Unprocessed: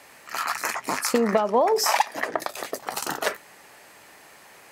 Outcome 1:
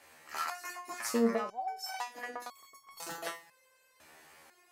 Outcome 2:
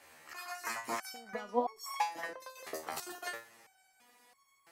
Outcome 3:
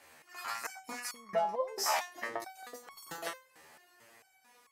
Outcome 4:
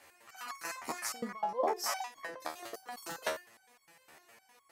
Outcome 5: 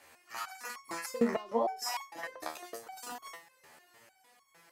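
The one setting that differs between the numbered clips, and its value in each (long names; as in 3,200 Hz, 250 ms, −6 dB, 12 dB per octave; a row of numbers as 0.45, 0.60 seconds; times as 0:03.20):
step-sequenced resonator, speed: 2, 3, 4.5, 9.8, 6.6 Hertz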